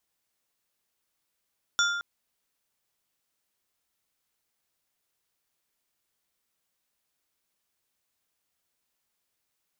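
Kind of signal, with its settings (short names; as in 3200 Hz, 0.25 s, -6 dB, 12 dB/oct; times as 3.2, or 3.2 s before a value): glass hit plate, length 0.22 s, lowest mode 1400 Hz, modes 4, decay 1.32 s, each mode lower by 2.5 dB, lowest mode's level -21.5 dB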